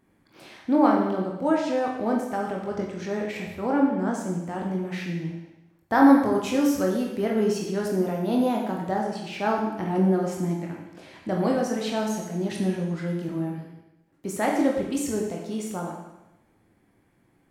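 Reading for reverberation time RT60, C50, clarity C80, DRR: 0.95 s, 3.0 dB, 5.5 dB, −1.0 dB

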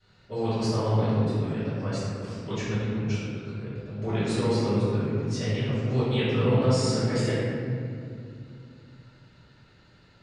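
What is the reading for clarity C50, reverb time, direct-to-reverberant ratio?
−4.0 dB, 2.5 s, −17.5 dB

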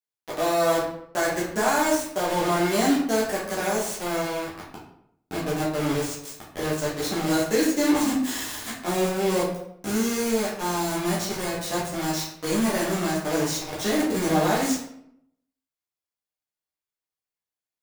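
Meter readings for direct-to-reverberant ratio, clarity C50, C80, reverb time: −7.5 dB, 3.0 dB, 7.0 dB, 0.75 s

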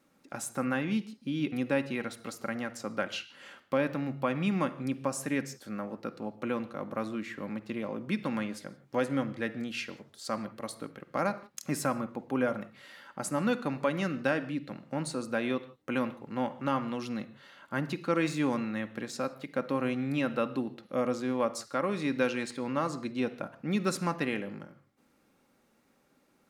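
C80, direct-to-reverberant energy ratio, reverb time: 18.0 dB, 8.0 dB, non-exponential decay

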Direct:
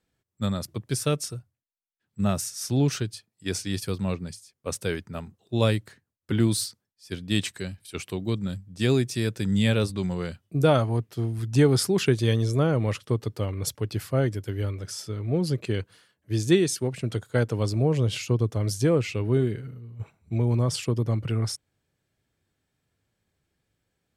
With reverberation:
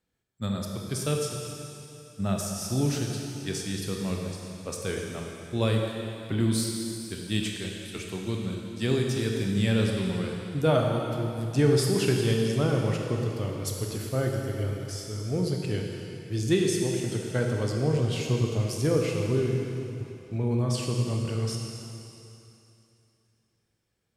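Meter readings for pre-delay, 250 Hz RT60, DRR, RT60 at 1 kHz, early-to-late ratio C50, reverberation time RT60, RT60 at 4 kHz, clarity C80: 17 ms, 2.7 s, 0.0 dB, 2.9 s, 1.5 dB, 2.9 s, 2.9 s, 2.5 dB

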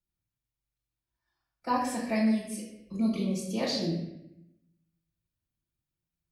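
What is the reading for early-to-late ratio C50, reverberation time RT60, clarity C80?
2.5 dB, 0.80 s, 5.5 dB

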